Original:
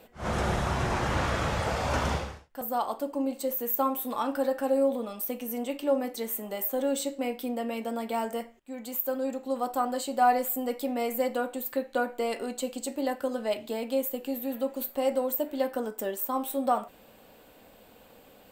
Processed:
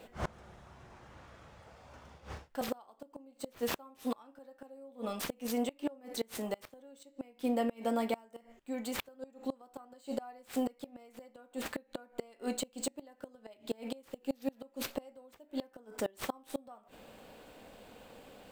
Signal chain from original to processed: median filter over 3 samples; inverted gate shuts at -23 dBFS, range -28 dB; trim +1 dB

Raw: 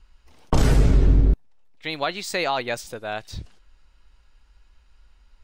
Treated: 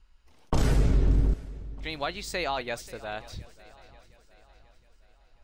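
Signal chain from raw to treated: shuffle delay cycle 715 ms, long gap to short 3:1, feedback 44%, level -20 dB; trim -6 dB

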